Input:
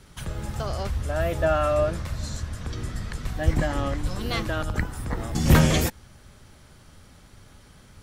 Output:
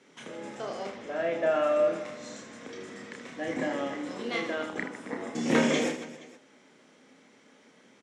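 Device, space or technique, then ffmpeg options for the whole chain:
television speaker: -filter_complex "[0:a]highpass=f=220:w=0.5412,highpass=f=220:w=1.3066,equalizer=f=260:t=q:w=4:g=7,equalizer=f=470:t=q:w=4:g=7,equalizer=f=1.3k:t=q:w=4:g=-3,equalizer=f=2.1k:t=q:w=4:g=6,equalizer=f=4.5k:t=q:w=4:g=-7,lowpass=f=7.3k:w=0.5412,lowpass=f=7.3k:w=1.3066,asettb=1/sr,asplit=3[a][b][c];[a]atrim=end=0.894[d];[b]atrim=start=0.89:end=1.43,asetpts=PTS-STARTPTS,afade=t=in:d=0.004:c=qsin,afade=t=out:st=0.536:d=0.004:c=qsin,lowpass=5.5k[e];[c]atrim=start=1.426[f];[d][e]acrossfade=d=0.004:c1=hsin:c2=qsin[g];[g][f]acrossfade=d=0.004:c1=qsin:c2=hsin,aecho=1:1:30|78|154.8|277.7|474.3:0.631|0.398|0.251|0.158|0.1,volume=-6.5dB"

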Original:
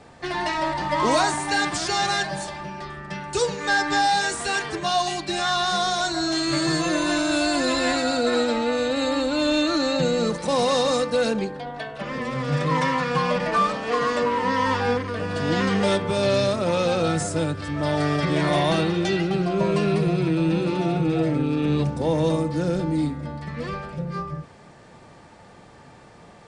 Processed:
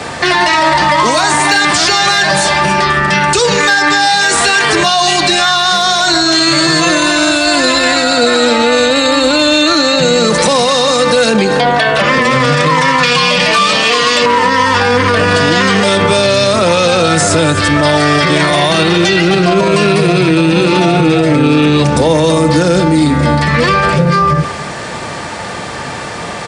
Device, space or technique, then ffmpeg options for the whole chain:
mastering chain: -filter_complex "[0:a]asettb=1/sr,asplit=3[a][b][c];[a]atrim=end=13.034[d];[b]atrim=start=13.03:end=14.26,asetpts=PTS-STARTPTS,afade=t=in:d=0.004:c=qsin,afade=t=out:st=1.226:d=0.004:c=qsin,highshelf=f=2.1k:t=q:w=1.5:g=7.5[e];[c]atrim=start=14.256[f];[d][e]acrossfade=d=0.004:c1=hsin:c2=qsin[g];[g][f]acrossfade=d=0.004:c1=qsin:c2=hsin,highpass=f=49:w=0.5412,highpass=f=49:w=1.3066,equalizer=f=810:t=o:w=0.24:g=-3,aecho=1:1:273:0.0891,acrossover=split=190|5500[h][i][j];[h]acompressor=threshold=-29dB:ratio=4[k];[i]acompressor=threshold=-22dB:ratio=4[l];[j]acompressor=threshold=-41dB:ratio=4[m];[k][l][m]amix=inputs=3:normalize=0,acompressor=threshold=-27dB:ratio=2.5,tiltshelf=f=650:g=-4.5,asoftclip=type=hard:threshold=-17.5dB,alimiter=level_in=27dB:limit=-1dB:release=50:level=0:latency=1,volume=-1dB"

